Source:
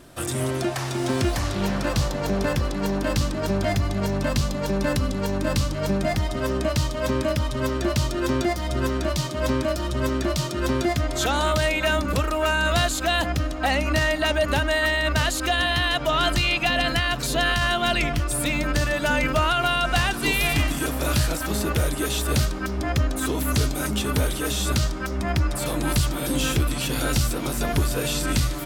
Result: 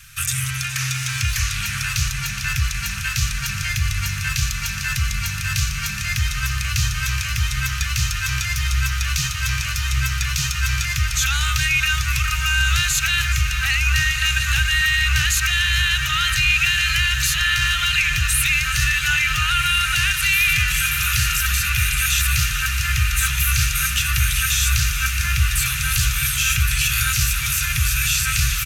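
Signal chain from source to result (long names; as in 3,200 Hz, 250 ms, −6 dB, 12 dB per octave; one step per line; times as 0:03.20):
thirty-one-band graphic EQ 250 Hz −7 dB, 1,000 Hz −5 dB, 2,500 Hz +10 dB, 6,300 Hz +8 dB, 12,500 Hz +7 dB
single-tap delay 420 ms −14.5 dB
brickwall limiter −15.5 dBFS, peak gain reduction 8.5 dB
Chebyshev band-stop filter 120–1,400 Hz, order 3
mains-hum notches 50/100 Hz
on a send: feedback delay with all-pass diffusion 1,513 ms, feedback 79%, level −9 dB
on the sum: level +6.5 dB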